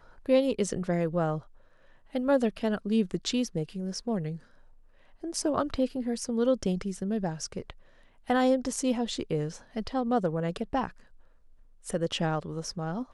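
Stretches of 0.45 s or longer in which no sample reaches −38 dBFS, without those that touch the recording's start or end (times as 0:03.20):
0:01.39–0:02.15
0:04.37–0:05.24
0:07.71–0:08.29
0:10.89–0:11.86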